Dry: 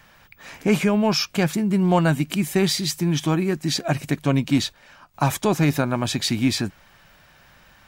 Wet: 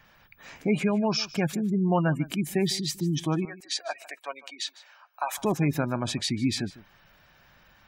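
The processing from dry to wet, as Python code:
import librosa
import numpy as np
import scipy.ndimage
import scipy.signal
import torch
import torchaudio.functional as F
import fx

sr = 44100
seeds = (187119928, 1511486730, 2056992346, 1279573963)

y = fx.spec_gate(x, sr, threshold_db=-25, keep='strong')
y = fx.highpass(y, sr, hz=640.0, slope=24, at=(3.45, 5.38))
y = y + 10.0 ** (-19.0 / 20.0) * np.pad(y, (int(152 * sr / 1000.0), 0))[:len(y)]
y = y * 10.0 ** (-5.5 / 20.0)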